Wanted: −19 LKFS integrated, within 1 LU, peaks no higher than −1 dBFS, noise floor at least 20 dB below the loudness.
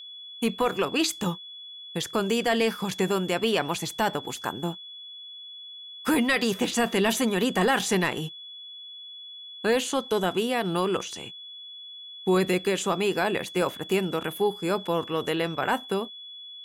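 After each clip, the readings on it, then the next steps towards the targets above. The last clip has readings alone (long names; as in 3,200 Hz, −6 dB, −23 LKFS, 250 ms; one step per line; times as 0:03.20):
interfering tone 3,400 Hz; level of the tone −40 dBFS; integrated loudness −26.5 LKFS; sample peak −13.5 dBFS; target loudness −19.0 LKFS
→ notch filter 3,400 Hz, Q 30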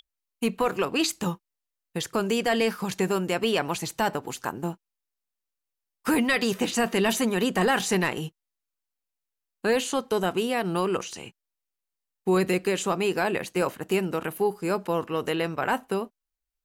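interfering tone none found; integrated loudness −26.5 LKFS; sample peak −14.0 dBFS; target loudness −19.0 LKFS
→ level +7.5 dB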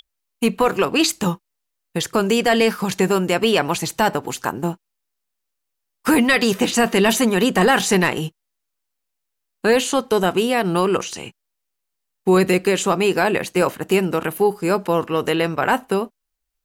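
integrated loudness −19.0 LKFS; sample peak −6.5 dBFS; background noise floor −78 dBFS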